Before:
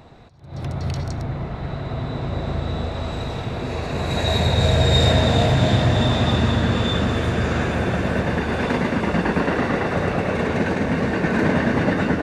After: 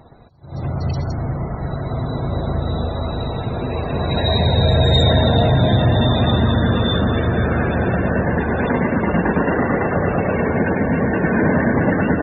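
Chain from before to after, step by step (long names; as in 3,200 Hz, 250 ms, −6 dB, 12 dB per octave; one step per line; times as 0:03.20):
leveller curve on the samples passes 1
spectral peaks only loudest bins 64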